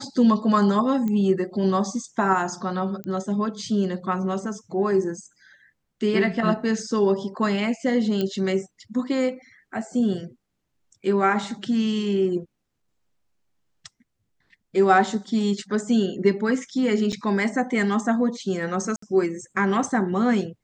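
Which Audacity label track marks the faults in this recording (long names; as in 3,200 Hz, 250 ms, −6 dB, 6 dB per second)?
1.080000	1.080000	click −17 dBFS
3.040000	3.040000	click −20 dBFS
8.210000	8.210000	click −14 dBFS
17.120000	17.130000	drop-out 7.4 ms
18.960000	19.020000	drop-out 64 ms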